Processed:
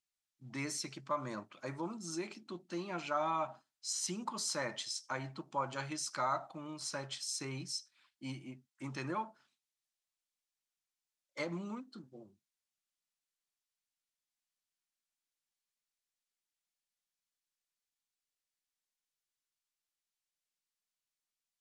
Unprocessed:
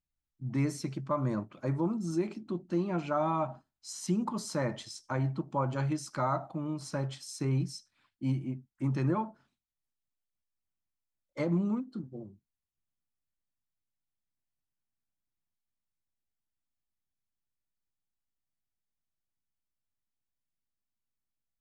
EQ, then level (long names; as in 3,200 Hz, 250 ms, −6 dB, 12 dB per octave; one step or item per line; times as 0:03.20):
high-frequency loss of the air 65 metres
spectral tilt +4.5 dB per octave
−2.5 dB